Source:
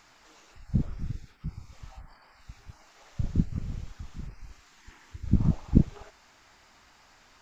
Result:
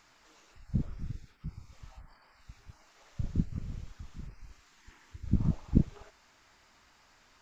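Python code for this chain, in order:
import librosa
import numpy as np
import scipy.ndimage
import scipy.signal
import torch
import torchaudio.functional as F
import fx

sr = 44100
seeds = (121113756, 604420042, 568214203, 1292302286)

y = fx.peak_eq(x, sr, hz=770.0, db=-3.5, octaves=0.2)
y = F.gain(torch.from_numpy(y), -4.5).numpy()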